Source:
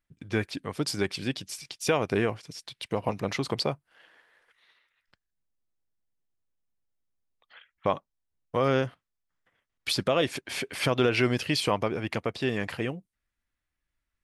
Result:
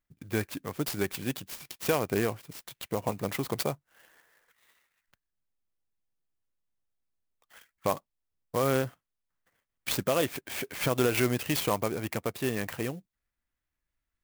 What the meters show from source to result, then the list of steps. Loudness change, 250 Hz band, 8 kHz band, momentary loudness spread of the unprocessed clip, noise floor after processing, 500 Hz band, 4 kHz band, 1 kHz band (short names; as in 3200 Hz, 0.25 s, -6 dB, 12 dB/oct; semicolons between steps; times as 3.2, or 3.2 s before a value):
-2.0 dB, -2.0 dB, +2.0 dB, 10 LU, under -85 dBFS, -2.0 dB, -5.0 dB, -2.0 dB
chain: clock jitter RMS 0.048 ms; gain -2 dB